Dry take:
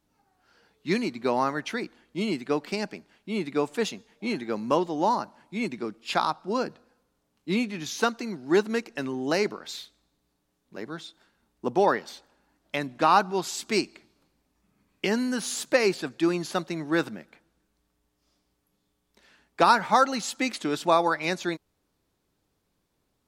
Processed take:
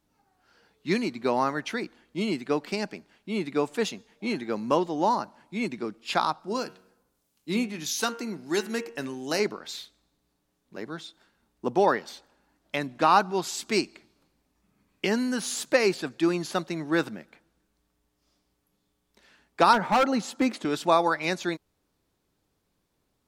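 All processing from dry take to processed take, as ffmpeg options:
ffmpeg -i in.wav -filter_complex "[0:a]asettb=1/sr,asplit=3[link_01][link_02][link_03];[link_01]atrim=end=6.404[link_04];[link_02]atrim=start=6.4:end=9.4,asetpts=PTS-STARTPTS,afade=type=in:duration=0.004:curve=qsin,afade=type=out:start_time=2.996:duration=0.004:curve=qsin,highshelf=frequency=6000:gain=11.5,bandreject=frequency=93.06:width_type=h:width=4,bandreject=frequency=186.12:width_type=h:width=4,bandreject=frequency=279.18:width_type=h:width=4,bandreject=frequency=372.24:width_type=h:width=4,bandreject=frequency=465.3:width_type=h:width=4,bandreject=frequency=558.36:width_type=h:width=4,bandreject=frequency=651.42:width_type=h:width=4,bandreject=frequency=744.48:width_type=h:width=4,bandreject=frequency=837.54:width_type=h:width=4,bandreject=frequency=930.6:width_type=h:width=4,bandreject=frequency=1023.66:width_type=h:width=4,bandreject=frequency=1116.72:width_type=h:width=4,bandreject=frequency=1209.78:width_type=h:width=4,bandreject=frequency=1302.84:width_type=h:width=4,bandreject=frequency=1395.9:width_type=h:width=4,bandreject=frequency=1488.96:width_type=h:width=4,bandreject=frequency=1582.02:width_type=h:width=4,bandreject=frequency=1675.08:width_type=h:width=4,bandreject=frequency=1768.14:width_type=h:width=4,bandreject=frequency=1861.2:width_type=h:width=4,bandreject=frequency=1954.26:width_type=h:width=4,bandreject=frequency=2047.32:width_type=h:width=4,bandreject=frequency=2140.38:width_type=h:width=4,bandreject=frequency=2233.44:width_type=h:width=4,bandreject=frequency=2326.5:width_type=h:width=4,bandreject=frequency=2419.56:width_type=h:width=4,bandreject=frequency=2512.62:width_type=h:width=4,bandreject=frequency=2605.68:width_type=h:width=4,bandreject=frequency=2698.74:width_type=h:width=4,bandreject=frequency=2791.8:width_type=h:width=4,bandreject=frequency=2884.86:width_type=h:width=4,bandreject=frequency=2977.92:width_type=h:width=4,bandreject=frequency=3070.98:width_type=h:width=4,bandreject=frequency=3164.04:width_type=h:width=4,bandreject=frequency=3257.1:width_type=h:width=4,bandreject=frequency=3350.16:width_type=h:width=4,acrossover=split=1900[link_05][link_06];[link_05]aeval=exprs='val(0)*(1-0.5/2+0.5/2*cos(2*PI*1.6*n/s))':channel_layout=same[link_07];[link_06]aeval=exprs='val(0)*(1-0.5/2-0.5/2*cos(2*PI*1.6*n/s))':channel_layout=same[link_08];[link_07][link_08]amix=inputs=2:normalize=0[link_09];[link_03]atrim=start=9.396[link_10];[link_04][link_09]acrossfade=duration=0.004:curve1=hsin:curve2=qsin[link_11];[link_11][link_10]acrossfade=duration=0.004:curve1=qsin:curve2=hsin,asettb=1/sr,asplit=3[link_12][link_13][link_14];[link_12]atrim=end=19.734[link_15];[link_13]atrim=start=19.73:end=20.65,asetpts=PTS-STARTPTS,afade=type=in:duration=0.004:curve=qsin,afade=type=out:start_time=0.916:duration=0.004:curve=qsin,highpass=150,tiltshelf=frequency=1400:gain=6.5,volume=17dB,asoftclip=hard,volume=-17dB[link_16];[link_14]atrim=start=20.646[link_17];[link_15][link_16]acrossfade=duration=0.004:curve1=hsin:curve2=qsin[link_18];[link_18][link_17]acrossfade=duration=0.004:curve1=qsin:curve2=hsin" out.wav

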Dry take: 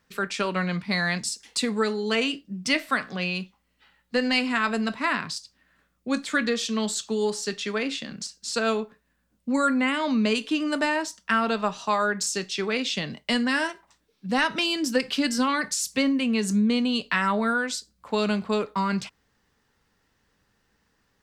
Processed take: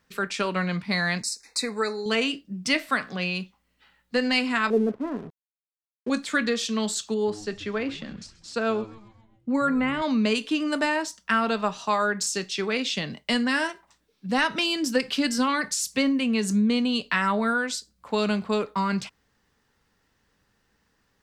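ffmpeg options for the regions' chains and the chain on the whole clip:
ffmpeg -i in.wav -filter_complex "[0:a]asettb=1/sr,asplit=3[link_01][link_02][link_03];[link_01]atrim=end=1.224[link_04];[link_02]atrim=start=1.22:end=2.06,asetpts=PTS-STARTPTS,afade=type=in:duration=0.004:curve=qsin,afade=type=out:start_time=0.836:duration=0.004:curve=qsin,asuperstop=centerf=3100:order=20:qfactor=2.9,equalizer=frequency=130:width_type=o:width=1.5:gain=-14.5[link_05];[link_03]atrim=start=2.056[link_06];[link_04][link_05]acrossfade=duration=0.004:curve1=hsin:curve2=qsin[link_07];[link_07][link_06]acrossfade=duration=0.004:curve1=qsin:curve2=hsin,asettb=1/sr,asplit=3[link_08][link_09][link_10];[link_08]atrim=end=4.704[link_11];[link_09]atrim=start=4.7:end=6.1,asetpts=PTS-STARTPTS,afade=type=in:duration=0.004:curve=qsin,afade=type=out:start_time=1.396:duration=0.004:curve=qsin,lowpass=frequency=430:width_type=q:width=3.9,aeval=exprs='sgn(val(0))*max(abs(val(0))-0.00562,0)':channel_layout=same[link_12];[link_10]atrim=start=6.096[link_13];[link_11][link_12]acrossfade=duration=0.004:curve1=hsin:curve2=qsin[link_14];[link_14][link_13]acrossfade=duration=0.004:curve1=qsin:curve2=hsin,asettb=1/sr,asplit=3[link_15][link_16][link_17];[link_15]atrim=end=7.144[link_18];[link_16]atrim=start=7.14:end=10.02,asetpts=PTS-STARTPTS,afade=type=in:duration=0.004:curve=qsin,afade=type=out:start_time=2.876:duration=0.004:curve=qsin,lowpass=frequency=1800:poles=1,asplit=6[link_19][link_20][link_21][link_22][link_23][link_24];[link_20]adelay=132,afreqshift=-110,volume=-19dB[link_25];[link_21]adelay=264,afreqshift=-220,volume=-24.2dB[link_26];[link_22]adelay=396,afreqshift=-330,volume=-29.4dB[link_27];[link_23]adelay=528,afreqshift=-440,volume=-34.6dB[link_28];[link_24]adelay=660,afreqshift=-550,volume=-39.8dB[link_29];[link_19][link_25][link_26][link_27][link_28][link_29]amix=inputs=6:normalize=0,atrim=end_sample=127008[link_30];[link_17]atrim=start=10.016[link_31];[link_18][link_30]acrossfade=duration=0.004:curve1=hsin:curve2=qsin[link_32];[link_32][link_31]acrossfade=duration=0.004:curve1=qsin:curve2=hsin" out.wav

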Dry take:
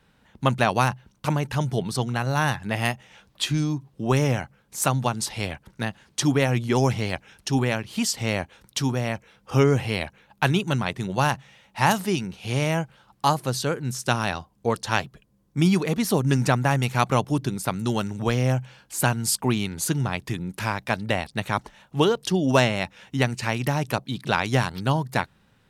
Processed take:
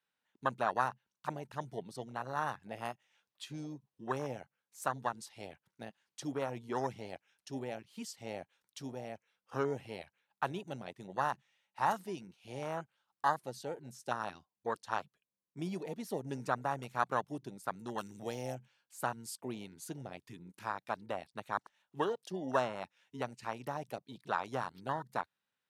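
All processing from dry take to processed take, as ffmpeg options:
ffmpeg -i in.wav -filter_complex "[0:a]asettb=1/sr,asplit=3[link_01][link_02][link_03];[link_01]atrim=end=17.984[link_04];[link_02]atrim=start=17.98:end=18.55,asetpts=PTS-STARTPTS,afade=type=in:duration=0.004:curve=qsin,afade=type=out:start_time=0.566:duration=0.004:curve=qsin,highshelf=frequency=4000:gain=12,acompressor=mode=upward:threshold=-23dB:ratio=2.5:attack=3.2:release=140:knee=2.83:detection=peak[link_05];[link_03]atrim=start=18.546[link_06];[link_04][link_05]acrossfade=duration=0.004:curve1=hsin:curve2=qsin[link_07];[link_07][link_06]acrossfade=duration=0.004:curve1=qsin:curve2=hsin,lowpass=frequency=1200:poles=1,afwtdn=0.0501,aderivative,volume=11dB" out.wav

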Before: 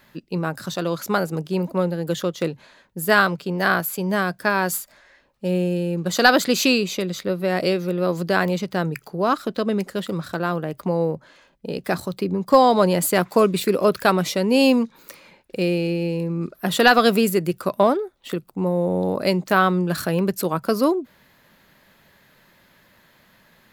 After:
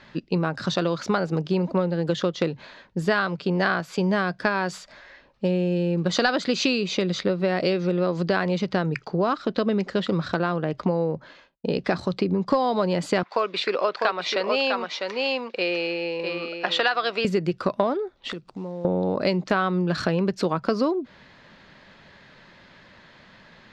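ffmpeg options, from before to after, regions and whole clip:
ffmpeg -i in.wav -filter_complex "[0:a]asettb=1/sr,asplit=3[link_01][link_02][link_03];[link_01]atrim=end=8.944[link_04];[link_02]atrim=start=8.94:end=11.95,asetpts=PTS-STARTPTS,afade=type=in:duration=0.004:curve=qsin,afade=type=out:start_time=3.006:duration=0.004:curve=qsin,agate=range=-33dB:threshold=-49dB:ratio=3:release=100:detection=peak,equalizer=frequency=9900:width_type=o:width=0.21:gain=-13[link_05];[link_03]atrim=start=11.946[link_06];[link_04][link_05]acrossfade=duration=0.004:curve1=hsin:curve2=qsin[link_07];[link_07][link_06]acrossfade=duration=0.004:curve1=qsin:curve2=hsin,asettb=1/sr,asplit=3[link_08][link_09][link_10];[link_08]atrim=end=13.234[link_11];[link_09]atrim=start=13.23:end=17.25,asetpts=PTS-STARTPTS,afade=type=in:duration=0.004:curve=qsin,afade=type=out:start_time=4.016:duration=0.004:curve=qsin,highpass=680,lowpass=4800,aecho=1:1:651:0.473,atrim=end_sample=177282[link_12];[link_10]atrim=start=17.246[link_13];[link_11][link_12]acrossfade=duration=0.004:curve1=hsin:curve2=qsin[link_14];[link_14][link_13]acrossfade=duration=0.004:curve1=qsin:curve2=hsin,asettb=1/sr,asplit=3[link_15][link_16][link_17];[link_15]atrim=end=18.324[link_18];[link_16]atrim=start=18.32:end=18.85,asetpts=PTS-STARTPTS,afade=type=in:duration=0.004:curve=qsin,afade=type=out:start_time=0.526:duration=0.004:curve=qsin,equalizer=frequency=10000:width=0.47:gain=7,acompressor=threshold=-41dB:ratio=3:attack=3.2:release=140:knee=1:detection=peak,acrusher=bits=7:mode=log:mix=0:aa=0.000001[link_19];[link_17]atrim=start=18.846[link_20];[link_18][link_19]acrossfade=duration=0.004:curve1=hsin:curve2=qsin[link_21];[link_21][link_20]acrossfade=duration=0.004:curve1=qsin:curve2=hsin,lowpass=frequency=5400:width=0.5412,lowpass=frequency=5400:width=1.3066,acompressor=threshold=-25dB:ratio=6,volume=5.5dB" out.wav

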